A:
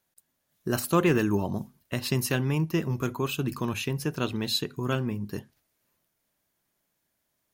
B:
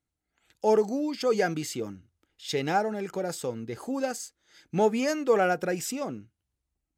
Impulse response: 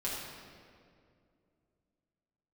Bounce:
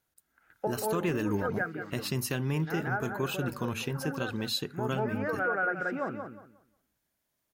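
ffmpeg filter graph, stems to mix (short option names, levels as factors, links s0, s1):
-filter_complex "[0:a]volume=0.668,asplit=2[s0][s1];[1:a]lowpass=f=1500:t=q:w=5.4,volume=0.75,asplit=2[s2][s3];[s3]volume=0.447[s4];[s1]apad=whole_len=307452[s5];[s2][s5]sidechaincompress=threshold=0.00891:ratio=5:attack=5.1:release=706[s6];[s4]aecho=0:1:180|360|540|720:1|0.24|0.0576|0.0138[s7];[s0][s6][s7]amix=inputs=3:normalize=0,alimiter=limit=0.0944:level=0:latency=1:release=100"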